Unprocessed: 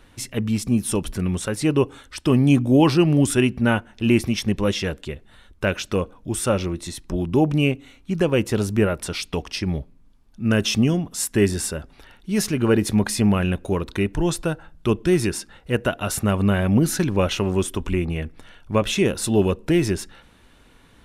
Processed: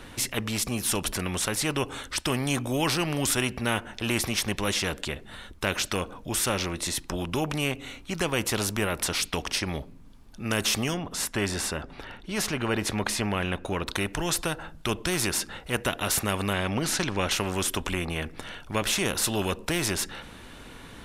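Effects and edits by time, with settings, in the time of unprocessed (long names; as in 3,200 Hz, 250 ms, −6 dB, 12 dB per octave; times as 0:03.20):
0:10.94–0:13.87: low-pass filter 2,600 Hz 6 dB per octave
0:16.53–0:17.31: low-pass filter 7,000 Hz
whole clip: every bin compressed towards the loudest bin 2 to 1; level −6 dB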